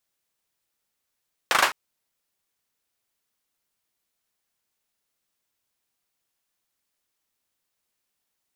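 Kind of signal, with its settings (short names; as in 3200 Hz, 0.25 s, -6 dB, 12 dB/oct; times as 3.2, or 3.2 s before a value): hand clap length 0.21 s, bursts 4, apart 38 ms, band 1200 Hz, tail 0.26 s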